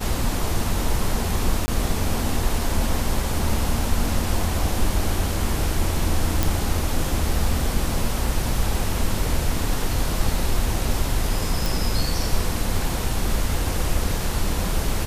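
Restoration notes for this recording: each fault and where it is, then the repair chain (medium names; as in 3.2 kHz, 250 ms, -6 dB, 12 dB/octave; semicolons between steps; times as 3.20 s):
1.66–1.68 s: dropout 20 ms
6.43 s: pop
11.66 s: pop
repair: de-click; interpolate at 1.66 s, 20 ms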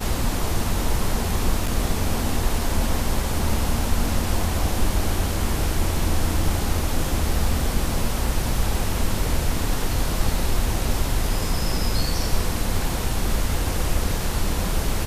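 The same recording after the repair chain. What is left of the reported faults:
nothing left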